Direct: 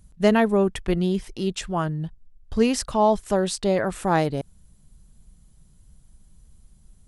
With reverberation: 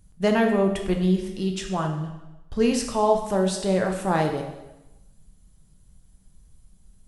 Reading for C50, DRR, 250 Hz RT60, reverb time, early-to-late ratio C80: 6.5 dB, 2.5 dB, 0.95 s, 1.0 s, 8.5 dB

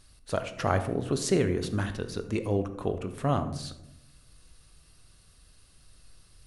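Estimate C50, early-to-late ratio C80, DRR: 11.0 dB, 14.0 dB, 9.0 dB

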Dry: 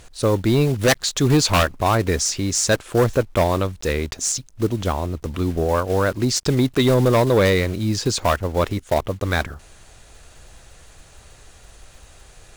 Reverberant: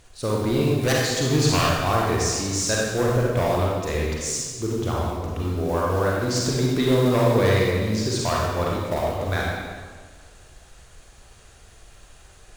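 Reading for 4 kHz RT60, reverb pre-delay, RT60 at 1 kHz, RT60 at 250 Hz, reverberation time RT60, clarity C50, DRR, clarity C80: 1.2 s, 35 ms, 1.6 s, 1.6 s, 1.6 s, -2.0 dB, -4.0 dB, 0.5 dB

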